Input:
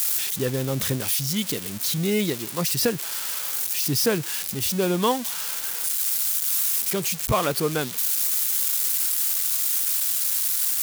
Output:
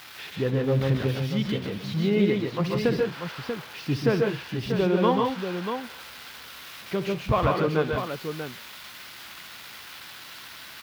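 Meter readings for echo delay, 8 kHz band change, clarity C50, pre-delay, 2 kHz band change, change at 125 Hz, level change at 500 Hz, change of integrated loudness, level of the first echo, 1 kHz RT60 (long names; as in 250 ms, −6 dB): 65 ms, −24.5 dB, no reverb audible, no reverb audible, −0.5 dB, +3.0 dB, +2.0 dB, −4.0 dB, −14.5 dB, no reverb audible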